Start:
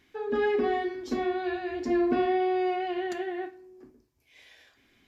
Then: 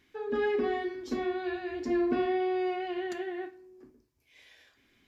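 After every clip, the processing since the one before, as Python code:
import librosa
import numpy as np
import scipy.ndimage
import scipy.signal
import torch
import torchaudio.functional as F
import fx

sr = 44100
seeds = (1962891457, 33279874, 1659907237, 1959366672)

y = fx.peak_eq(x, sr, hz=730.0, db=-3.0, octaves=0.42)
y = y * librosa.db_to_amplitude(-2.5)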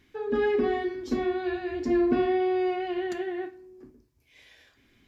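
y = fx.low_shelf(x, sr, hz=240.0, db=7.5)
y = y * librosa.db_to_amplitude(2.0)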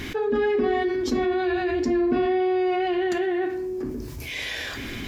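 y = fx.env_flatten(x, sr, amount_pct=70)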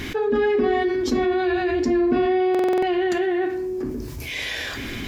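y = fx.buffer_glitch(x, sr, at_s=(2.5,), block=2048, repeats=6)
y = y * librosa.db_to_amplitude(2.5)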